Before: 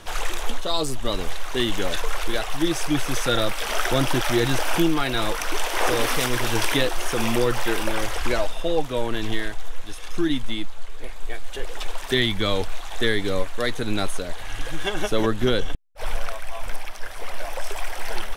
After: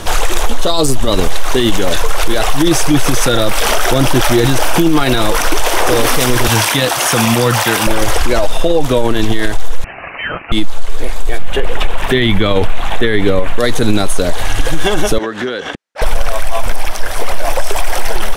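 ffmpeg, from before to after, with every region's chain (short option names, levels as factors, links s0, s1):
-filter_complex "[0:a]asettb=1/sr,asplit=3[s0][s1][s2];[s0]atrim=end=6.484[s3];[s1]atrim=start=6.48:end=7.87,asetpts=PTS-STARTPTS,afade=t=in:d=0.004:c=qsin,afade=t=out:st=1.386:d=0.004:c=qsin,highpass=f=82:w=0.5412,highpass=f=82:w=1.3066,equalizer=f=380:w=1.5:g=-10.5[s4];[s2]atrim=start=7.866[s5];[s3][s4]acrossfade=d=0.004:c1=hsin:c2=qsin[s6];[s6][s5]acrossfade=d=0.004:c1=qsin:c2=hsin,asettb=1/sr,asplit=3[s7][s8][s9];[s7]atrim=end=9.844[s10];[s8]atrim=start=9.84:end=10.52,asetpts=PTS-STARTPTS,afade=t=in:d=0.004:c=qsin,afade=t=out:st=0.676:d=0.004:c=qsin,highpass=f=670:w=0.5412,highpass=f=670:w=1.3066,lowpass=f=2900:t=q:w=0.5098,lowpass=f=2900:t=q:w=0.6013,lowpass=f=2900:t=q:w=0.9,lowpass=f=2900:t=q:w=2.563,afreqshift=-3400[s11];[s9]atrim=start=10.516[s12];[s10][s11]acrossfade=d=0.004:c1=hsin:c2=qsin[s13];[s13][s12]acrossfade=d=0.004:c1=qsin:c2=hsin,asettb=1/sr,asplit=3[s14][s15][s16];[s14]atrim=end=11.384[s17];[s15]atrim=start=11.38:end=13.59,asetpts=PTS-STARTPTS,afade=t=in:d=0.004:c=qsin,afade=t=out:st=2.206:d=0.004:c=qsin,highshelf=f=3700:t=q:w=1.5:g=-9,aeval=exprs='val(0)+0.00501*(sin(2*PI*50*n/s)+sin(2*PI*2*50*n/s)/2+sin(2*PI*3*50*n/s)/3+sin(2*PI*4*50*n/s)/4+sin(2*PI*5*50*n/s)/5)':c=same[s18];[s16]atrim=start=13.586[s19];[s17][s18]acrossfade=d=0.004:c1=hsin:c2=qsin[s20];[s20][s19]acrossfade=d=0.004:c1=qsin:c2=hsin,asettb=1/sr,asplit=3[s21][s22][s23];[s21]atrim=end=15.184[s24];[s22]atrim=start=15.18:end=16.02,asetpts=PTS-STARTPTS,afade=t=in:d=0.004:c=qsin,afade=t=out:st=0.836:d=0.004:c=qsin,highpass=270,lowpass=5900,equalizer=f=1700:t=o:w=0.84:g=8,acompressor=threshold=0.0224:ratio=12:attack=3.2:release=140:knee=1:detection=peak[s25];[s23]atrim=start=16.016[s26];[s24][s25]acrossfade=d=0.004:c1=hsin:c2=qsin[s27];[s27][s26]acrossfade=d=0.004:c1=qsin:c2=hsin,equalizer=f=2200:w=0.58:g=-4.5,alimiter=level_in=10:limit=0.891:release=50:level=0:latency=1,volume=0.891"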